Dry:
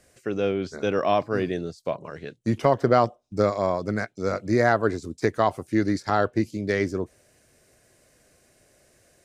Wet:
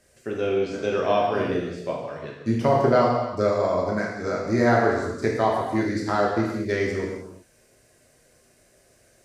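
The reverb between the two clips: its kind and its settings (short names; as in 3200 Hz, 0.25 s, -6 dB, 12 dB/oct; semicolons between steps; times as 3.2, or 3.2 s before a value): non-linear reverb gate 0.41 s falling, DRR -3 dB; gain -3.5 dB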